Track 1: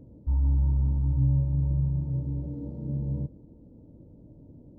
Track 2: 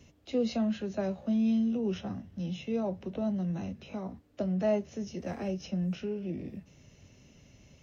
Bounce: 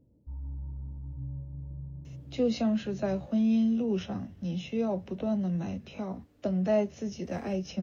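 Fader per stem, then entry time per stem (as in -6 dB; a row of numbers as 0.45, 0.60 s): -15.0, +2.0 dB; 0.00, 2.05 s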